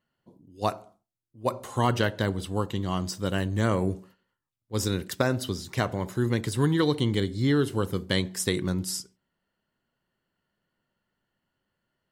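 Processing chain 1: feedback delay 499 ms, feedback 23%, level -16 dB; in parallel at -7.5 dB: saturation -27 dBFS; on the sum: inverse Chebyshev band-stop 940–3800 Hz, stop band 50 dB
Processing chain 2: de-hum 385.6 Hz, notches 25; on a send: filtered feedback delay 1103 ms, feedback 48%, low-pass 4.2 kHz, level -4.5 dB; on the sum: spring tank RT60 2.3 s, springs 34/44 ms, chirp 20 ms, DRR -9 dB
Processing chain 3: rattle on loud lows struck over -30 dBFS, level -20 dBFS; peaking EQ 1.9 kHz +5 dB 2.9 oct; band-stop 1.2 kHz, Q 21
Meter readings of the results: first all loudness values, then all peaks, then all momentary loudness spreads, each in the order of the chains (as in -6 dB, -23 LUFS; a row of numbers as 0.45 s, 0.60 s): -28.0 LUFS, -17.5 LUFS, -25.0 LUFS; -13.0 dBFS, -1.5 dBFS, -5.5 dBFS; 13 LU, 16 LU, 7 LU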